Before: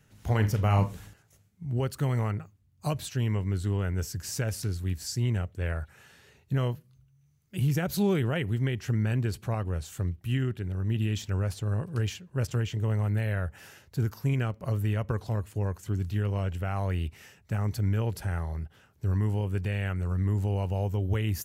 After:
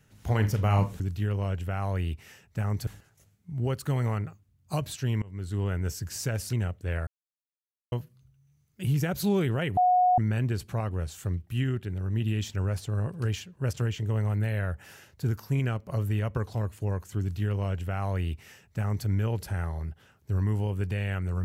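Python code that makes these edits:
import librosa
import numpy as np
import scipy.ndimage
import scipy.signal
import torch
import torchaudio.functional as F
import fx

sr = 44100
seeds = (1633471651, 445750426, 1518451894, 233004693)

y = fx.edit(x, sr, fx.fade_in_from(start_s=3.35, length_s=0.42, floor_db=-23.0),
    fx.cut(start_s=4.66, length_s=0.61),
    fx.silence(start_s=5.81, length_s=0.85),
    fx.bleep(start_s=8.51, length_s=0.41, hz=728.0, db=-18.0),
    fx.duplicate(start_s=15.94, length_s=1.87, to_s=1.0), tone=tone)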